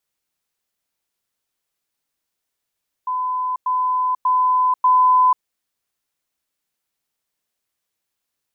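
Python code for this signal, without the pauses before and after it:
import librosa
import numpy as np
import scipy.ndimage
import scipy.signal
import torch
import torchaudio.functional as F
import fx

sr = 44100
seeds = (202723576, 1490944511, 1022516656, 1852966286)

y = fx.level_ladder(sr, hz=1010.0, from_db=-19.5, step_db=3.0, steps=4, dwell_s=0.49, gap_s=0.1)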